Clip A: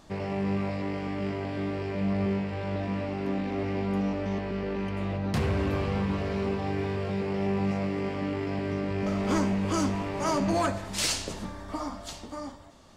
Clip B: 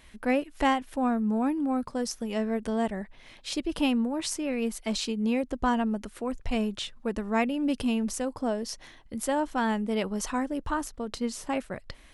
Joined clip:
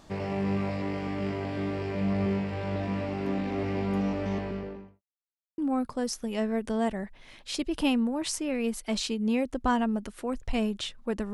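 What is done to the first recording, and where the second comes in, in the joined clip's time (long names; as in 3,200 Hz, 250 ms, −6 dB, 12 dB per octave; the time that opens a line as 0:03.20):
clip A
0:04.33–0:05.02: fade out and dull
0:05.02–0:05.58: silence
0:05.58: continue with clip B from 0:01.56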